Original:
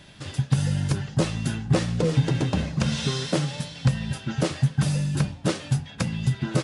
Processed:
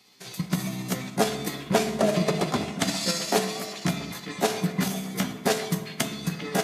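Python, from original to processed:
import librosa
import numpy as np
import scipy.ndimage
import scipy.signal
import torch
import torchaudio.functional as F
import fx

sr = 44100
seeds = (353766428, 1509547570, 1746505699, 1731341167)

p1 = fx.pitch_heads(x, sr, semitones=4.5)
p2 = fx.highpass(p1, sr, hz=450.0, slope=6)
p3 = fx.level_steps(p2, sr, step_db=15)
p4 = p2 + F.gain(torch.from_numpy(p3), 0.0).numpy()
p5 = fx.dmg_crackle(p4, sr, seeds[0], per_s=20.0, level_db=-52.0)
p6 = p5 + fx.echo_stepped(p5, sr, ms=398, hz=2500.0, octaves=-0.7, feedback_pct=70, wet_db=-7.5, dry=0)
p7 = fx.rev_fdn(p6, sr, rt60_s=1.8, lf_ratio=1.55, hf_ratio=0.5, size_ms=14.0, drr_db=8.0)
y = fx.band_widen(p7, sr, depth_pct=40)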